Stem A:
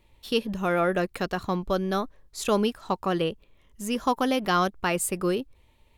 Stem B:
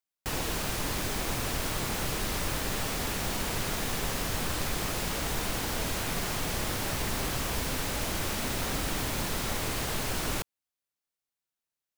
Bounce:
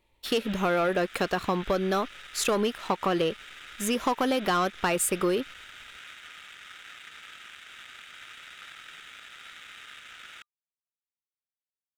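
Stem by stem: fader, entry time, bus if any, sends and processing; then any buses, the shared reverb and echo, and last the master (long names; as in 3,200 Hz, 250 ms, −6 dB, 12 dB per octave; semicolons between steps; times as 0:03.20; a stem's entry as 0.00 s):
−1.0 dB, 0.00 s, no send, bass and treble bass −7 dB, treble −1 dB
−11.0 dB, 0.00 s, no send, brick-wall band-pass 1,200–3,900 Hz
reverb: not used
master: leveller curve on the samples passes 2; downward compressor 4 to 1, threshold −23 dBFS, peak gain reduction 6 dB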